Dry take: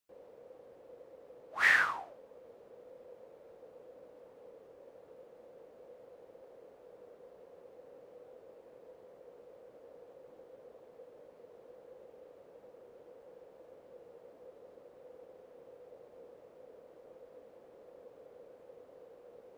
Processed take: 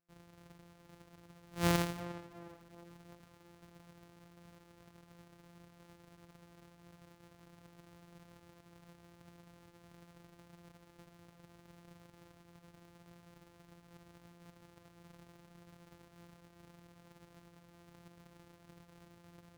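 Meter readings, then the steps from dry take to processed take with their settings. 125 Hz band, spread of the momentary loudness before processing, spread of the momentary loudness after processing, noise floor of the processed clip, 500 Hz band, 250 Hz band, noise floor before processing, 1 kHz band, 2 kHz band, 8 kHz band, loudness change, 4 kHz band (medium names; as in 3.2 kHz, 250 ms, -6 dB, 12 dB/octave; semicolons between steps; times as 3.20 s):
+22.5 dB, 19 LU, 25 LU, -64 dBFS, -1.0 dB, +16.0 dB, -59 dBFS, -4.0 dB, -16.5 dB, no reading, -9.5 dB, -0.5 dB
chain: sorted samples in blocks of 256 samples; tape echo 360 ms, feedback 49%, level -11 dB, low-pass 1.5 kHz; trim -4.5 dB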